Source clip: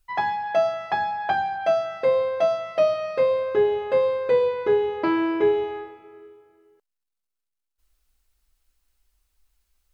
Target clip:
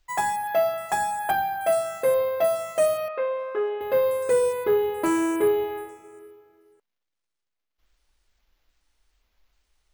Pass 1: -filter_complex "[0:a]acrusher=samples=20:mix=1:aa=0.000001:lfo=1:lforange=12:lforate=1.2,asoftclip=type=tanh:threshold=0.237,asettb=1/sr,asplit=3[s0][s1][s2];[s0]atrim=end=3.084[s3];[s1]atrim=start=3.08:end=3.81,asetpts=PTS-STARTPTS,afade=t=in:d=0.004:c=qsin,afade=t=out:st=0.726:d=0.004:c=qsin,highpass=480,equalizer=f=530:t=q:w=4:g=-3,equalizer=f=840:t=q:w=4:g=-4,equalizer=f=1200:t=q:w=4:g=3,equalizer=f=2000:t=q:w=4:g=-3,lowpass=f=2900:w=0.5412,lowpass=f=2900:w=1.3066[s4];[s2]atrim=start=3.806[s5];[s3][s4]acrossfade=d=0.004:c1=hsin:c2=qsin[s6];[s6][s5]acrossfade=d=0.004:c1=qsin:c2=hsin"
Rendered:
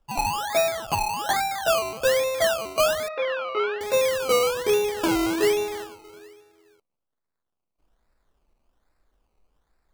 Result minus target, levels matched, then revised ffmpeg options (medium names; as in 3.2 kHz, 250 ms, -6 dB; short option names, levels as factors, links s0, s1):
decimation with a swept rate: distortion +17 dB
-filter_complex "[0:a]acrusher=samples=4:mix=1:aa=0.000001:lfo=1:lforange=2.4:lforate=1.2,asoftclip=type=tanh:threshold=0.237,asettb=1/sr,asplit=3[s0][s1][s2];[s0]atrim=end=3.084[s3];[s1]atrim=start=3.08:end=3.81,asetpts=PTS-STARTPTS,afade=t=in:d=0.004:c=qsin,afade=t=out:st=0.726:d=0.004:c=qsin,highpass=480,equalizer=f=530:t=q:w=4:g=-3,equalizer=f=840:t=q:w=4:g=-4,equalizer=f=1200:t=q:w=4:g=3,equalizer=f=2000:t=q:w=4:g=-3,lowpass=f=2900:w=0.5412,lowpass=f=2900:w=1.3066[s4];[s2]atrim=start=3.806[s5];[s3][s4]acrossfade=d=0.004:c1=hsin:c2=qsin[s6];[s6][s5]acrossfade=d=0.004:c1=qsin:c2=hsin"